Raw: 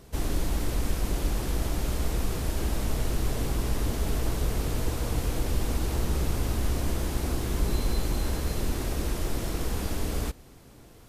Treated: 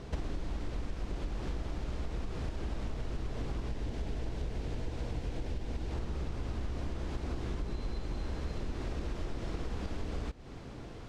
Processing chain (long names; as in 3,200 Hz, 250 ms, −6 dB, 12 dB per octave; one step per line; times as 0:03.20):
0:03.68–0:05.92: parametric band 1,200 Hz −6.5 dB 0.42 octaves
downward compressor 16 to 1, threshold −38 dBFS, peak gain reduction 19.5 dB
high-frequency loss of the air 130 metres
level +6.5 dB